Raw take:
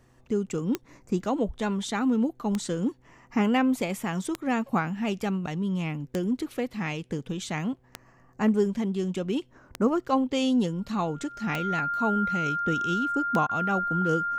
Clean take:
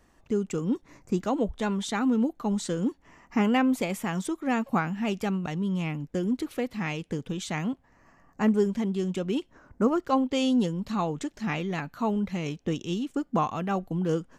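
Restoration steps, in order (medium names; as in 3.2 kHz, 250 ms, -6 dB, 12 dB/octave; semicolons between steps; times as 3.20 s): de-click; de-hum 125.6 Hz, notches 4; band-stop 1.4 kHz, Q 30; interpolate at 13.47 s, 22 ms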